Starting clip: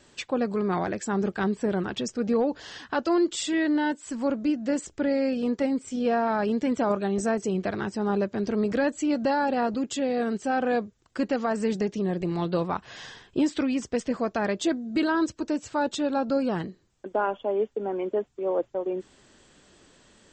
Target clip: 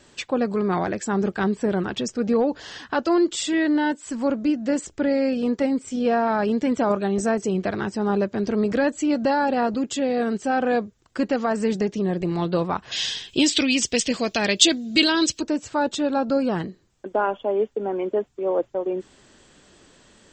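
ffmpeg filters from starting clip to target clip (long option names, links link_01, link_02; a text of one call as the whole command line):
ffmpeg -i in.wav -filter_complex "[0:a]asplit=3[link_01][link_02][link_03];[link_01]afade=type=out:start_time=12.91:duration=0.02[link_04];[link_02]highshelf=frequency=2000:width_type=q:width=1.5:gain=13.5,afade=type=in:start_time=12.91:duration=0.02,afade=type=out:start_time=15.4:duration=0.02[link_05];[link_03]afade=type=in:start_time=15.4:duration=0.02[link_06];[link_04][link_05][link_06]amix=inputs=3:normalize=0,volume=3.5dB" out.wav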